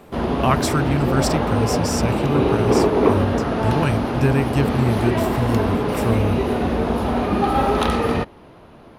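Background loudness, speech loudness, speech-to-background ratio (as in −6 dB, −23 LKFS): −20.5 LKFS, −23.5 LKFS, −3.0 dB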